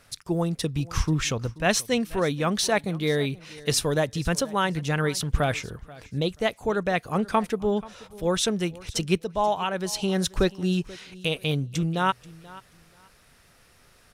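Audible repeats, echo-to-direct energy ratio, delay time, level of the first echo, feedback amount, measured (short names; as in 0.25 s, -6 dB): 2, -20.5 dB, 0.483 s, -20.5 dB, 22%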